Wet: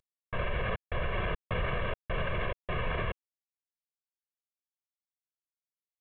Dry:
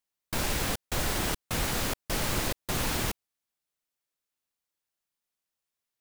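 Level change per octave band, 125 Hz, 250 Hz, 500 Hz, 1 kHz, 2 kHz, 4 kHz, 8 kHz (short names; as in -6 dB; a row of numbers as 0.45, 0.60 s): -0.5 dB, -7.0 dB, +1.0 dB, -2.0 dB, -1.0 dB, -10.5 dB, under -40 dB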